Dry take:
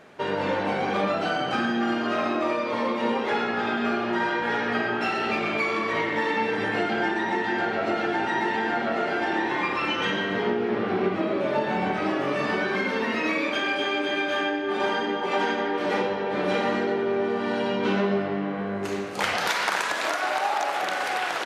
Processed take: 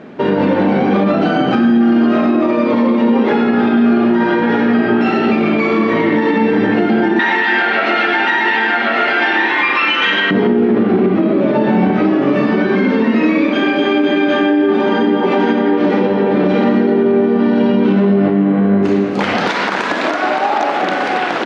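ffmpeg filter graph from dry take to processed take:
ffmpeg -i in.wav -filter_complex "[0:a]asettb=1/sr,asplit=3[link_01][link_02][link_03];[link_01]atrim=end=7.194[link_04];[link_02]atrim=start=7.19:end=10.31,asetpts=PTS-STARTPTS,afade=type=in:duration=0.004:curve=qsin,afade=type=out:start_time=3.116:duration=0.004:curve=qsin,highpass=frequency=1200:poles=1,equalizer=frequency=2300:width=0.43:gain=12[link_05];[link_03]atrim=start=10.306[link_06];[link_04][link_05]acrossfade=duration=0.004:curve1=hsin:curve2=qsin[link_07];[link_07][link_06]acrossfade=duration=0.004:curve1=qsin:curve2=hsin,lowpass=4300,equalizer=frequency=240:width_type=o:width=1.6:gain=15,alimiter=limit=-13dB:level=0:latency=1:release=71,volume=8dB" out.wav

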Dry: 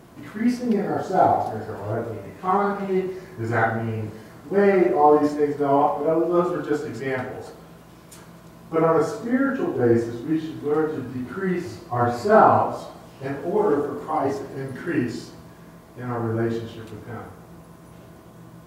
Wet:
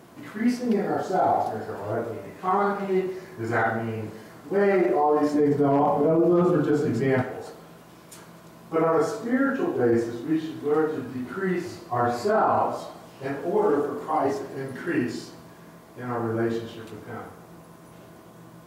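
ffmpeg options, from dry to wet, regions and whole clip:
ffmpeg -i in.wav -filter_complex "[0:a]asettb=1/sr,asplit=3[link_01][link_02][link_03];[link_01]atrim=end=5.344[link_04];[link_02]atrim=start=5.34:end=7.22,asetpts=PTS-STARTPTS,afade=type=in:duration=0.004:curve=qsin,afade=type=out:start_time=1.876:duration=0.004:curve=qsin,equalizer=frequency=150:width=0.47:gain=13.5,asoftclip=type=hard:threshold=-5dB[link_05];[link_03]atrim=start=7.216[link_06];[link_04][link_05]acrossfade=duration=0.004:curve1=hsin:curve2=qsin[link_07];[link_07][link_06]acrossfade=duration=0.004:curve1=qsin:curve2=hsin,highpass=frequency=180:poles=1,alimiter=limit=-13.5dB:level=0:latency=1:release=19" out.wav

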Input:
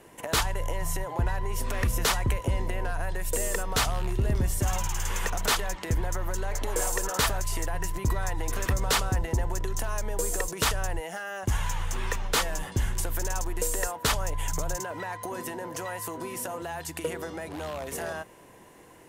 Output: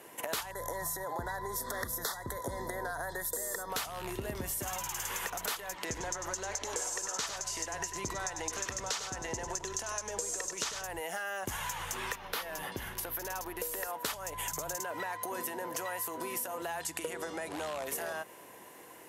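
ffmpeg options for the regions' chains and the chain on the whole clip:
ffmpeg -i in.wav -filter_complex "[0:a]asettb=1/sr,asplit=3[link_01][link_02][link_03];[link_01]atrim=end=0.514[link_04];[link_02]atrim=start=0.51:end=3.7,asetpts=PTS-STARTPTS,afade=type=in:duration=0.004:curve=qsin,afade=type=out:start_time=3.186:duration=0.004:curve=qsin,asuperstop=centerf=2600:order=12:qfactor=1.9,equalizer=frequency=2400:width=7.6:gain=6.5[link_05];[link_03]atrim=start=3.696[link_06];[link_04][link_05]acrossfade=duration=0.004:curve1=hsin:curve2=qsin[link_07];[link_07][link_06]acrossfade=duration=0.004:curve1=qsin:curve2=hsin,asettb=1/sr,asplit=3[link_08][link_09][link_10];[link_08]atrim=end=5.854[link_11];[link_09]atrim=start=5.85:end=10.84,asetpts=PTS-STARTPTS,afade=type=in:duration=0.004:curve=qsin,afade=type=out:start_time=4.986:duration=0.004:curve=qsin,lowpass=frequency=6400:width_type=q:width=2.7,aecho=1:1:97:0.355,atrim=end_sample=220059[link_12];[link_10]atrim=start=10.836[link_13];[link_11][link_12]acrossfade=duration=0.004:curve1=hsin:curve2=qsin[link_14];[link_14][link_13]acrossfade=duration=0.004:curve1=qsin:curve2=hsin,asettb=1/sr,asplit=3[link_15][link_16][link_17];[link_15]atrim=end=12.154[link_18];[link_16]atrim=start=12.15:end=13.93,asetpts=PTS-STARTPTS,afade=type=in:duration=0.004:curve=qsin,afade=type=out:start_time=1.776:duration=0.004:curve=qsin,equalizer=frequency=7600:width_type=o:width=0.66:gain=-11,acompressor=threshold=-29dB:ratio=2:attack=3.2:release=140:knee=1:detection=peak[link_19];[link_17]atrim=start=13.926[link_20];[link_18][link_19]acrossfade=duration=0.004:curve1=hsin:curve2=qsin[link_21];[link_21][link_20]acrossfade=duration=0.004:curve1=qsin:curve2=hsin,asettb=1/sr,asplit=3[link_22][link_23][link_24];[link_22]atrim=end=16.774[link_25];[link_23]atrim=start=16.77:end=17.86,asetpts=PTS-STARTPTS,afade=type=in:duration=0.004:curve=qsin,afade=type=out:start_time=1.086:duration=0.004:curve=qsin,lowpass=frequency=11000:width=0.5412,lowpass=frequency=11000:width=1.3066,equalizer=frequency=7500:width_type=o:width=0.43:gain=3.5[link_26];[link_24]atrim=start=17.856[link_27];[link_25][link_26]acrossfade=duration=0.004:curve1=hsin:curve2=qsin[link_28];[link_28][link_27]acrossfade=duration=0.004:curve1=qsin:curve2=hsin,highpass=frequency=430:poles=1,equalizer=frequency=12000:width=3.2:gain=9,acompressor=threshold=-35dB:ratio=10,volume=2dB" out.wav

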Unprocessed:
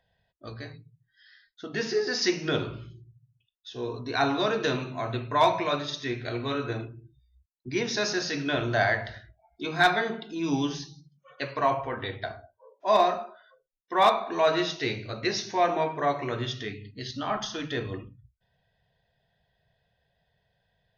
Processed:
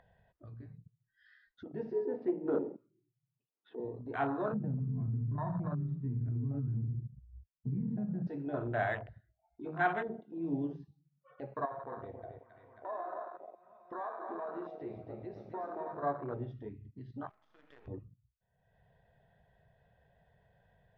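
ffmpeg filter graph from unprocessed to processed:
ffmpeg -i in.wav -filter_complex "[0:a]asettb=1/sr,asplit=3[link_01][link_02][link_03];[link_01]atrim=end=2.054[link_04];[link_02]atrim=start=2.05:end=3.8,asetpts=PTS-STARTPTS,afade=type=in:duration=0.004:curve=qsin,afade=type=out:start_time=1.746:duration=0.004:curve=qsin,adynamicsmooth=sensitivity=2.5:basefreq=1400,aeval=exprs='clip(val(0),-1,0.0531)':channel_layout=same,highpass=frequency=190:width=0.5412,highpass=frequency=190:width=1.3066,equalizer=frequency=290:width_type=q:width=4:gain=8,equalizer=frequency=460:width_type=q:width=4:gain=8,equalizer=frequency=940:width_type=q:width=4:gain=4,lowpass=frequency=3900:width=0.5412,lowpass=frequency=3900:width=1.3066[link_05];[link_03]atrim=start=3.796[link_06];[link_04][link_05]acrossfade=duration=0.004:curve1=hsin:curve2=qsin[link_07];[link_07][link_06]acrossfade=duration=0.004:curve1=qsin:curve2=hsin,asettb=1/sr,asplit=3[link_08][link_09][link_10];[link_08]atrim=end=4.524[link_11];[link_09]atrim=start=4.52:end=8.27,asetpts=PTS-STARTPTS,afade=type=in:duration=0.004:curve=qsin,afade=type=out:start_time=3.746:duration=0.004:curve=qsin,lowshelf=frequency=270:width_type=q:width=3:gain=13.5,acompressor=threshold=-23dB:ratio=12:attack=3.2:release=140:knee=1:detection=peak,lowpass=1400[link_12];[link_10]atrim=start=8.266[link_13];[link_11][link_12]acrossfade=duration=0.004:curve1=hsin:curve2=qsin[link_14];[link_14][link_13]acrossfade=duration=0.004:curve1=qsin:curve2=hsin,asettb=1/sr,asplit=3[link_15][link_16][link_17];[link_15]atrim=end=11.654[link_18];[link_16]atrim=start=11.65:end=16.03,asetpts=PTS-STARTPTS,afade=type=in:duration=0.004:curve=qsin,afade=type=out:start_time=4.376:duration=0.004:curve=qsin,lowshelf=frequency=160:gain=-7,acompressor=threshold=-30dB:ratio=4:attack=3.2:release=140:knee=1:detection=peak,asplit=2[link_19][link_20];[link_20]adelay=270,lowpass=frequency=4200:poles=1,volume=-5dB,asplit=2[link_21][link_22];[link_22]adelay=270,lowpass=frequency=4200:poles=1,volume=0.52,asplit=2[link_23][link_24];[link_24]adelay=270,lowpass=frequency=4200:poles=1,volume=0.52,asplit=2[link_25][link_26];[link_26]adelay=270,lowpass=frequency=4200:poles=1,volume=0.52,asplit=2[link_27][link_28];[link_28]adelay=270,lowpass=frequency=4200:poles=1,volume=0.52,asplit=2[link_29][link_30];[link_30]adelay=270,lowpass=frequency=4200:poles=1,volume=0.52,asplit=2[link_31][link_32];[link_32]adelay=270,lowpass=frequency=4200:poles=1,volume=0.52[link_33];[link_19][link_21][link_23][link_25][link_27][link_29][link_31][link_33]amix=inputs=8:normalize=0,atrim=end_sample=193158[link_34];[link_17]atrim=start=16.026[link_35];[link_18][link_34]acrossfade=duration=0.004:curve1=hsin:curve2=qsin[link_36];[link_36][link_35]acrossfade=duration=0.004:curve1=qsin:curve2=hsin,asettb=1/sr,asplit=3[link_37][link_38][link_39];[link_37]atrim=end=17.294[link_40];[link_38]atrim=start=17.29:end=17.88,asetpts=PTS-STARTPTS,afade=type=in:duration=0.004:curve=qsin,afade=type=out:start_time=0.586:duration=0.004:curve=qsin,highpass=460,acompressor=threshold=-39dB:ratio=8:attack=3.2:release=140:knee=1:detection=peak,acrusher=bits=7:dc=4:mix=0:aa=0.000001[link_41];[link_39]atrim=start=17.876[link_42];[link_40][link_41]acrossfade=duration=0.004:curve1=hsin:curve2=qsin[link_43];[link_43][link_42]acrossfade=duration=0.004:curve1=qsin:curve2=hsin,lowpass=1600,afwtdn=0.0316,acompressor=mode=upward:threshold=-37dB:ratio=2.5,volume=-7.5dB" out.wav

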